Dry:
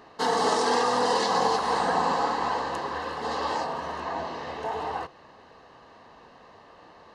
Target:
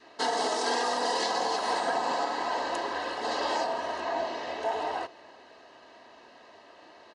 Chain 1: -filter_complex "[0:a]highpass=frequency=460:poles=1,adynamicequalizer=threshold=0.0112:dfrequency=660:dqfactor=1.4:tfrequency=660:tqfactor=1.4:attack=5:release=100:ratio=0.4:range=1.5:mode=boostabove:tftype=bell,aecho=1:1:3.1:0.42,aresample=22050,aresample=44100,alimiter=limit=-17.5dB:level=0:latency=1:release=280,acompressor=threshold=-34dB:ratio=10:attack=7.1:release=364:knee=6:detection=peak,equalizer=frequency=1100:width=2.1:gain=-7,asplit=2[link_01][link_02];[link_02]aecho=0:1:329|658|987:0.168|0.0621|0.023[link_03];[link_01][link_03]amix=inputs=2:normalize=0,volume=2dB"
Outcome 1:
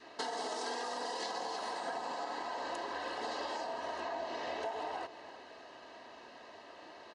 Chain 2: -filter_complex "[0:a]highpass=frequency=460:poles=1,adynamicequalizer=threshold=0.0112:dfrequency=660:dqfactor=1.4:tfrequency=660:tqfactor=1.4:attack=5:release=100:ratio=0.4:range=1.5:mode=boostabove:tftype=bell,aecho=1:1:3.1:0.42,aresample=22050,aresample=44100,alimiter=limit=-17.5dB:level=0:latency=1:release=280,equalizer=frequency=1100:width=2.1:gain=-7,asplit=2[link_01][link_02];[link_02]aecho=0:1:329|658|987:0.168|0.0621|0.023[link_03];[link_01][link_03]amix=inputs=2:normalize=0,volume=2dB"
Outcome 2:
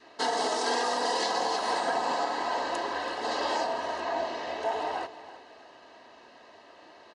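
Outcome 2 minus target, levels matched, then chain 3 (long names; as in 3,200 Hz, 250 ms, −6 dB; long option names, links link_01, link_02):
echo-to-direct +11.5 dB
-filter_complex "[0:a]highpass=frequency=460:poles=1,adynamicequalizer=threshold=0.0112:dfrequency=660:dqfactor=1.4:tfrequency=660:tqfactor=1.4:attack=5:release=100:ratio=0.4:range=1.5:mode=boostabove:tftype=bell,aecho=1:1:3.1:0.42,aresample=22050,aresample=44100,alimiter=limit=-17.5dB:level=0:latency=1:release=280,equalizer=frequency=1100:width=2.1:gain=-7,asplit=2[link_01][link_02];[link_02]aecho=0:1:329|658:0.0447|0.0165[link_03];[link_01][link_03]amix=inputs=2:normalize=0,volume=2dB"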